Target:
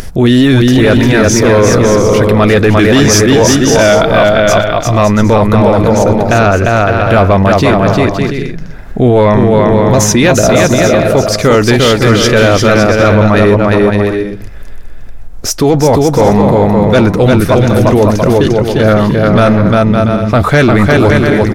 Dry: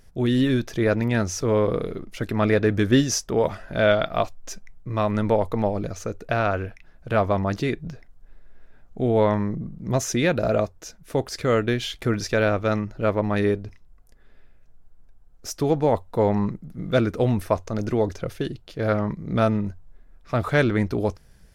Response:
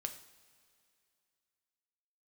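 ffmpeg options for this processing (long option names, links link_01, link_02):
-af "aecho=1:1:350|560|686|761.6|807:0.631|0.398|0.251|0.158|0.1,acompressor=mode=upward:threshold=-30dB:ratio=2.5,apsyclip=19.5dB,volume=-2dB"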